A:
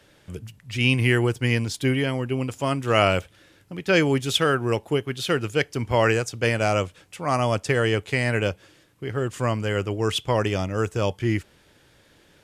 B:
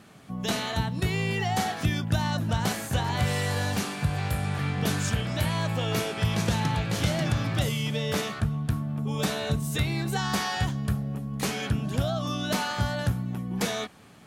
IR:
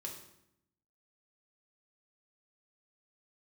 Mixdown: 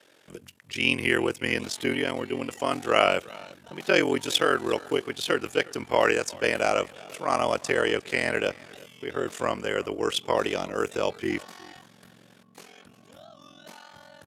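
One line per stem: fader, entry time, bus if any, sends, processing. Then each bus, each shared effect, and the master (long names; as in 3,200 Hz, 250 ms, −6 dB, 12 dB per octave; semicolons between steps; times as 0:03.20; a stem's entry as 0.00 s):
+2.0 dB, 0.00 s, no send, echo send −22.5 dB, no processing
−15.0 dB, 1.15 s, no send, echo send −16.5 dB, no processing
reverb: not used
echo: single-tap delay 356 ms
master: high-pass filter 300 Hz 12 dB per octave; ring modulation 22 Hz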